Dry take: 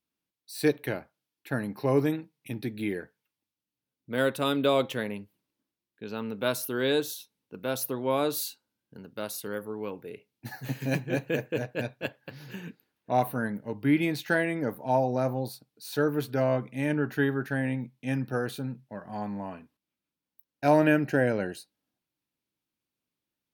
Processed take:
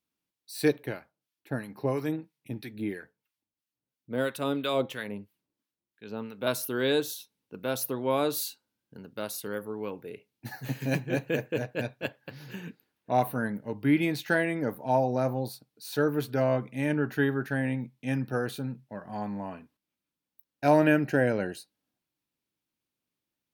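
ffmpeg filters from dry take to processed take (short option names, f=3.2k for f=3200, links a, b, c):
-filter_complex "[0:a]asettb=1/sr,asplit=3[a][b][c];[a]atrim=end=0.834[d];[b]atrim=start=0.83:end=6.47,asetpts=PTS-STARTPTS,afade=t=in:d=0.004:c=qsin,afade=t=out:st=5.636:d=0.004:c=qsin,acrossover=split=1000[e][f];[e]aeval=exprs='val(0)*(1-0.7/2+0.7/2*cos(2*PI*3*n/s))':c=same[g];[f]aeval=exprs='val(0)*(1-0.7/2-0.7/2*cos(2*PI*3*n/s))':c=same[h];[g][h]amix=inputs=2:normalize=0[i];[c]atrim=start=6.466[j];[d][i]acrossfade=d=0.004:c1=hsin:c2=qsin[k];[k][j]acrossfade=d=0.004:c1=qsin:c2=hsin"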